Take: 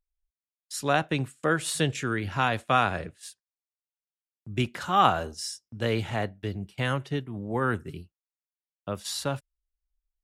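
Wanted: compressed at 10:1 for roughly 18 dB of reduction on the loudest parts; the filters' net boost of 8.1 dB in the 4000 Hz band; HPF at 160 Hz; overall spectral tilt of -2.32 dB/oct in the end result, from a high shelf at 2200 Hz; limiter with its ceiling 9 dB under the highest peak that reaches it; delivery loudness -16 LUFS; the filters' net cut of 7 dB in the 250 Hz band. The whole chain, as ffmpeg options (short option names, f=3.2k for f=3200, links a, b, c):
-af "highpass=160,equalizer=f=250:t=o:g=-8.5,highshelf=f=2.2k:g=6.5,equalizer=f=4k:t=o:g=4.5,acompressor=threshold=-33dB:ratio=10,volume=23.5dB,alimiter=limit=-3.5dB:level=0:latency=1"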